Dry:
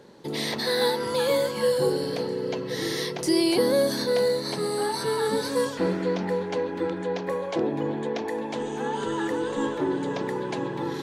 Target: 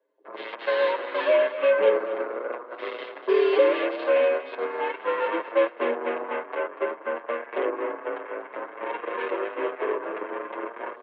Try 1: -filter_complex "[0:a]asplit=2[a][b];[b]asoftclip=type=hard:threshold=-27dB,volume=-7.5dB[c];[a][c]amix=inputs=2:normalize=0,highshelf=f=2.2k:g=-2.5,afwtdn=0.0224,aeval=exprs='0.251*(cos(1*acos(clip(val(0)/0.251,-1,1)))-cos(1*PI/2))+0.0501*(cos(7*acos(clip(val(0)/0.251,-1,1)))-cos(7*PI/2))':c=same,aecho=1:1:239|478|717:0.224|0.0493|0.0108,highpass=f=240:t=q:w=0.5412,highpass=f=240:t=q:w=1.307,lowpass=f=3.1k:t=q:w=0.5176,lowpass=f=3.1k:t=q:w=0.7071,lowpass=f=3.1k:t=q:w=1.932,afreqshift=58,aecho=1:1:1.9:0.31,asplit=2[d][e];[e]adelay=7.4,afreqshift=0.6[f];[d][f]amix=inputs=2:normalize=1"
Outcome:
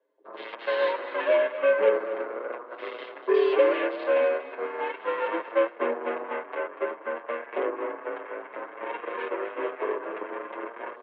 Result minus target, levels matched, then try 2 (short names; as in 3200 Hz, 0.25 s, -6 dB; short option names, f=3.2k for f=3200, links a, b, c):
hard clip: distortion +19 dB
-filter_complex "[0:a]asplit=2[a][b];[b]asoftclip=type=hard:threshold=-16.5dB,volume=-7.5dB[c];[a][c]amix=inputs=2:normalize=0,highshelf=f=2.2k:g=-2.5,afwtdn=0.0224,aeval=exprs='0.251*(cos(1*acos(clip(val(0)/0.251,-1,1)))-cos(1*PI/2))+0.0501*(cos(7*acos(clip(val(0)/0.251,-1,1)))-cos(7*PI/2))':c=same,aecho=1:1:239|478|717:0.224|0.0493|0.0108,highpass=f=240:t=q:w=0.5412,highpass=f=240:t=q:w=1.307,lowpass=f=3.1k:t=q:w=0.5176,lowpass=f=3.1k:t=q:w=0.7071,lowpass=f=3.1k:t=q:w=1.932,afreqshift=58,aecho=1:1:1.9:0.31,asplit=2[d][e];[e]adelay=7.4,afreqshift=0.6[f];[d][f]amix=inputs=2:normalize=1"